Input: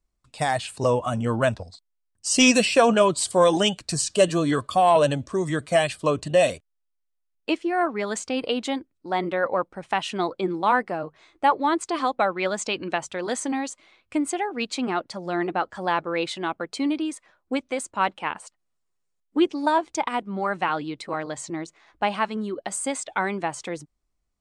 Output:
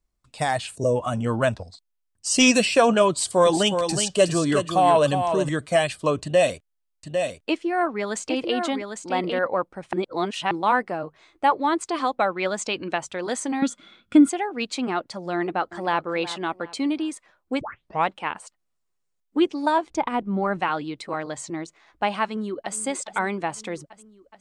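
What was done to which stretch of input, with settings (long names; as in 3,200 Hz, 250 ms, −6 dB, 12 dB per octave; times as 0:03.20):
0:00.75–0:00.96: gain on a spectral selection 700–5,500 Hz −15 dB
0:03.09–0:05.49: single-tap delay 367 ms −7 dB
0:06.23–0:09.39: single-tap delay 802 ms −6 dB
0:09.93–0:10.51: reverse
0:13.62–0:14.29: hollow resonant body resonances 200/1,400/3,400 Hz, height 18 dB, ringing for 30 ms
0:15.34–0:16.06: delay throw 370 ms, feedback 35%, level −14.5 dB
0:17.61: tape start 0.47 s
0:19.90–0:20.60: spectral tilt −2.5 dB per octave
0:22.22–0:22.76: delay throw 420 ms, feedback 75%, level −15.5 dB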